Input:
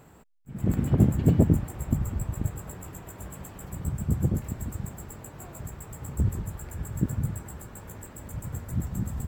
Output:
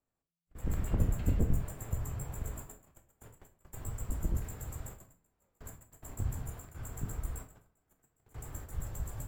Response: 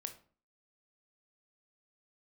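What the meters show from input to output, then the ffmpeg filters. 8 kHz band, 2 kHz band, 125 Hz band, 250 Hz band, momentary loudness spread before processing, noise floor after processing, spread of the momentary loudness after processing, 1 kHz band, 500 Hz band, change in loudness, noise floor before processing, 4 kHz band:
-5.0 dB, -6.0 dB, -10.5 dB, -14.5 dB, 20 LU, under -85 dBFS, 20 LU, -7.0 dB, -11.0 dB, -10.0 dB, -52 dBFS, n/a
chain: -filter_complex "[0:a]agate=range=-30dB:threshold=-37dB:ratio=16:detection=peak,equalizer=f=70:w=0.77:g=-9,acrossover=split=260[a][b];[b]acompressor=threshold=-29dB:ratio=2[c];[a][c]amix=inputs=2:normalize=0,afreqshift=-170[d];[1:a]atrim=start_sample=2205[e];[d][e]afir=irnorm=-1:irlink=0"

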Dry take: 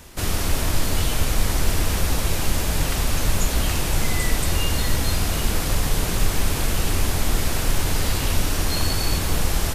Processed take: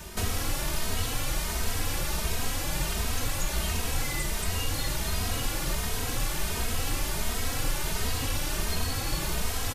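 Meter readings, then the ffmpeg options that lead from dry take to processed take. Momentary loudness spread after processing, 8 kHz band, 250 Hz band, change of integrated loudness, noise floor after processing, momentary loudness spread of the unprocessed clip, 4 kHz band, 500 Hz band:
1 LU, -5.5 dB, -8.5 dB, -6.5 dB, -32 dBFS, 1 LU, -5.5 dB, -7.5 dB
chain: -filter_complex "[0:a]acrossover=split=590|3600[a][b][c];[a]acompressor=threshold=-31dB:ratio=4[d];[b]acompressor=threshold=-40dB:ratio=4[e];[c]acompressor=threshold=-38dB:ratio=4[f];[d][e][f]amix=inputs=3:normalize=0,asplit=2[g][h];[h]adelay=2.9,afreqshift=1.4[i];[g][i]amix=inputs=2:normalize=1,volume=5.5dB"

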